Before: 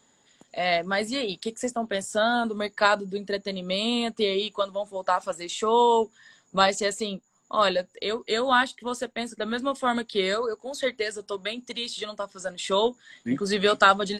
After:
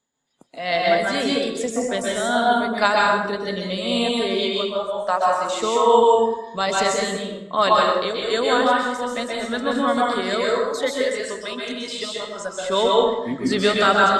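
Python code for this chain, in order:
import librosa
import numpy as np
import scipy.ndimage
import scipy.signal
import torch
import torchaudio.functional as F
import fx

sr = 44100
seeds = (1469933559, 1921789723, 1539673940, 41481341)

y = x * (1.0 - 0.55 / 2.0 + 0.55 / 2.0 * np.cos(2.0 * np.pi * 2.5 * (np.arange(len(x)) / sr)))
y = fx.noise_reduce_blind(y, sr, reduce_db=18)
y = fx.rev_plate(y, sr, seeds[0], rt60_s=1.0, hf_ratio=0.6, predelay_ms=115, drr_db=-3.5)
y = y * 10.0 ** (3.0 / 20.0)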